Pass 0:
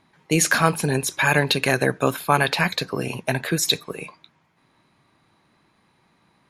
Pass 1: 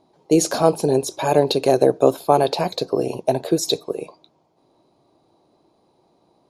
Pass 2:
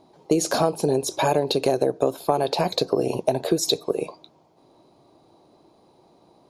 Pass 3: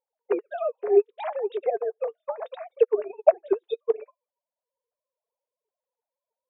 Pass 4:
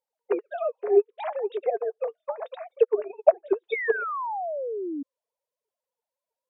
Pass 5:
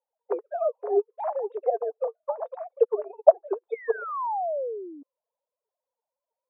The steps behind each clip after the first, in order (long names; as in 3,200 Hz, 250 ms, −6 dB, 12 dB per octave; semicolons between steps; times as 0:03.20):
drawn EQ curve 210 Hz 0 dB, 340 Hz +11 dB, 700 Hz +11 dB, 1,800 Hz −15 dB, 4,600 Hz +3 dB, 14,000 Hz −4 dB; level −3 dB
downward compressor 6 to 1, threshold −22 dBFS, peak gain reduction 13 dB; level +4.5 dB
three sine waves on the formant tracks; flanger 0.71 Hz, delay 2.1 ms, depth 4.6 ms, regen +65%; expander for the loud parts 2.5 to 1, over −41 dBFS; level +7.5 dB
sound drawn into the spectrogram fall, 0:03.72–0:05.03, 270–2,300 Hz −30 dBFS; low-shelf EQ 180 Hz −4.5 dB; treble cut that deepens with the level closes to 1,900 Hz, closed at −17.5 dBFS
flat-topped band-pass 730 Hz, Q 1.1; level +2.5 dB